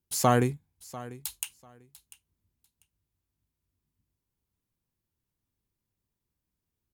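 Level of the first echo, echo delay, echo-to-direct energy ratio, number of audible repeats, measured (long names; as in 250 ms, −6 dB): −18.0 dB, 694 ms, −18.0 dB, 2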